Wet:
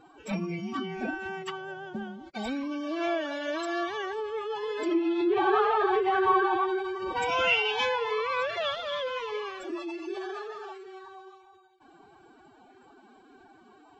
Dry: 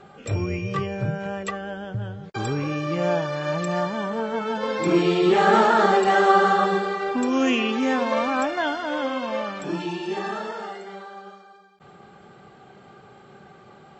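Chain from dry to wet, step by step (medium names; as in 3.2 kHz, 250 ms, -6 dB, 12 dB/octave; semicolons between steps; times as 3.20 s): low-pass that closes with the level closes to 2.2 kHz, closed at -15 dBFS; formant-preserving pitch shift +11.5 st; dynamic bell 3.3 kHz, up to +7 dB, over -42 dBFS, Q 1.1; trim -6.5 dB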